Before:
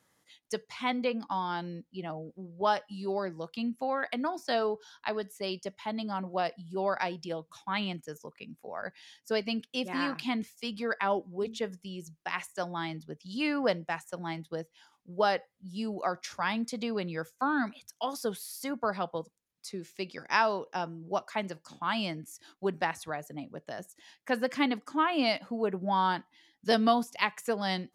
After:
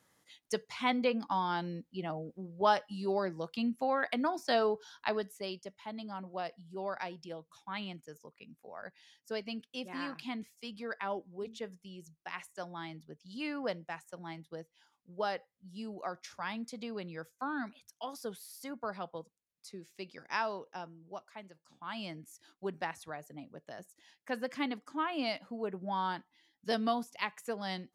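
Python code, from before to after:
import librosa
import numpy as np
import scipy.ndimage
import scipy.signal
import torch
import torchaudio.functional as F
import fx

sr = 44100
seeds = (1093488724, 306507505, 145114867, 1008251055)

y = fx.gain(x, sr, db=fx.line((5.15, 0.0), (5.64, -8.0), (20.6, -8.0), (21.51, -17.0), (22.15, -7.0)))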